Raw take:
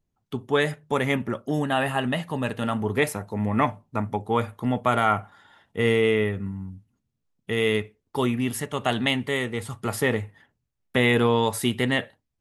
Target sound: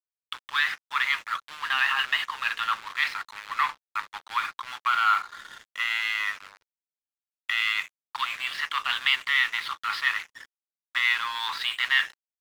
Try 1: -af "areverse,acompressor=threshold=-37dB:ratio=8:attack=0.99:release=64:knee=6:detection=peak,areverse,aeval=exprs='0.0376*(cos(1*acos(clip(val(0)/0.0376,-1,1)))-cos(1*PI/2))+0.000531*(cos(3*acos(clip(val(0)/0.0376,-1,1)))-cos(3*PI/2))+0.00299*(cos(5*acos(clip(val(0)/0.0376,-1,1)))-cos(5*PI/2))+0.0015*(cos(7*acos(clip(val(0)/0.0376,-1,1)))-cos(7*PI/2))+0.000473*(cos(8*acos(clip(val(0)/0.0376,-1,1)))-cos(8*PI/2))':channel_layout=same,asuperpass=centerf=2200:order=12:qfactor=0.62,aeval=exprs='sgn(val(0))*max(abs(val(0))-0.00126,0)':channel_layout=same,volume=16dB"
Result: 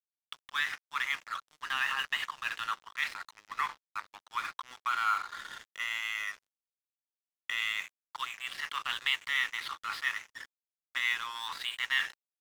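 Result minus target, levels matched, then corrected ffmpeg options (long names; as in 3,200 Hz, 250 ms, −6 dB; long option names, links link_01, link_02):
downward compressor: peak gain reduction +8 dB
-af "areverse,acompressor=threshold=-28dB:ratio=8:attack=0.99:release=64:knee=6:detection=peak,areverse,aeval=exprs='0.0376*(cos(1*acos(clip(val(0)/0.0376,-1,1)))-cos(1*PI/2))+0.000531*(cos(3*acos(clip(val(0)/0.0376,-1,1)))-cos(3*PI/2))+0.00299*(cos(5*acos(clip(val(0)/0.0376,-1,1)))-cos(5*PI/2))+0.0015*(cos(7*acos(clip(val(0)/0.0376,-1,1)))-cos(7*PI/2))+0.000473*(cos(8*acos(clip(val(0)/0.0376,-1,1)))-cos(8*PI/2))':channel_layout=same,asuperpass=centerf=2200:order=12:qfactor=0.62,aeval=exprs='sgn(val(0))*max(abs(val(0))-0.00126,0)':channel_layout=same,volume=16dB"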